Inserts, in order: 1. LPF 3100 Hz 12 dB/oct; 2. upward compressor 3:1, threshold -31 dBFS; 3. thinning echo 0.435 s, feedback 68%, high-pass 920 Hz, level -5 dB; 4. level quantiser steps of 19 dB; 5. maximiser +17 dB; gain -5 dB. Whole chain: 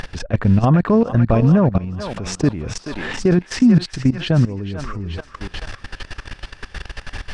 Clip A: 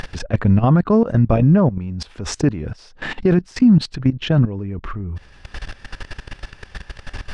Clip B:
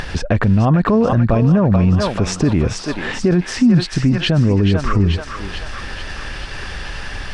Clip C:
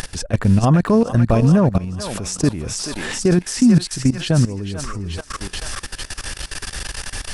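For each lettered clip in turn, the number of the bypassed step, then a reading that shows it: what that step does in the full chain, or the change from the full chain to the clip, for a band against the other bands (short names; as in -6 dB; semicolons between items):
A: 3, momentary loudness spread change +2 LU; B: 4, crest factor change -2.5 dB; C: 1, 8 kHz band +10.0 dB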